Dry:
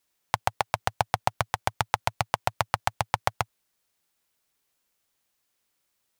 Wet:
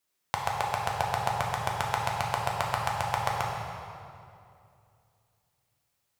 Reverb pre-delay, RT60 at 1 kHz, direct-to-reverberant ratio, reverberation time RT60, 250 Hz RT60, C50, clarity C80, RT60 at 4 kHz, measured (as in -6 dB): 4 ms, 2.4 s, -2.0 dB, 2.5 s, 2.8 s, 1.0 dB, 2.5 dB, 1.8 s